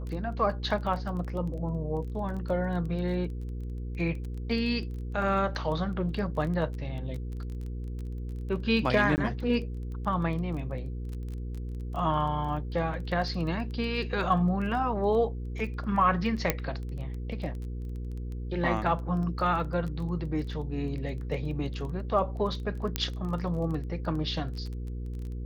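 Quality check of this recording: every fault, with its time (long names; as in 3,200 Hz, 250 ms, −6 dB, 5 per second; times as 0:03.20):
surface crackle 17 per second −36 dBFS
mains hum 60 Hz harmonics 8 −35 dBFS
0:09.16–0:09.18: drop-out 19 ms
0:16.50: click −8 dBFS
0:22.96: click −11 dBFS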